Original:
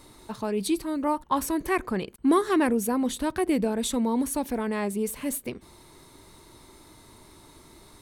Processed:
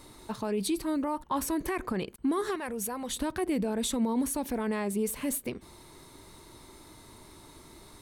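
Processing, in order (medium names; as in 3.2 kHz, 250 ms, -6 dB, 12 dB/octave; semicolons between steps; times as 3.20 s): peak limiter -21.5 dBFS, peak gain reduction 10.5 dB; 2.55–3.16 s: peaking EQ 290 Hz -13 dB 1 oct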